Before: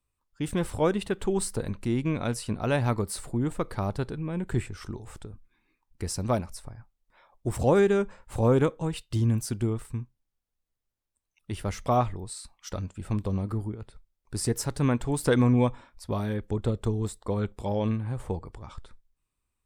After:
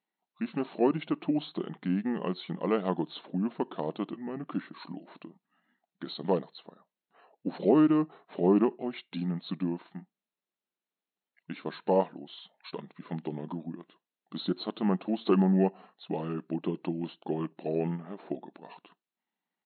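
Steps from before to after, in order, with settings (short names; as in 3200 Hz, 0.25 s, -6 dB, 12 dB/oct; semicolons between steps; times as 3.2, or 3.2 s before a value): pitch shift -4.5 st; dynamic EQ 1900 Hz, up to -6 dB, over -49 dBFS, Q 1.6; brick-wall FIR band-pass 160–4300 Hz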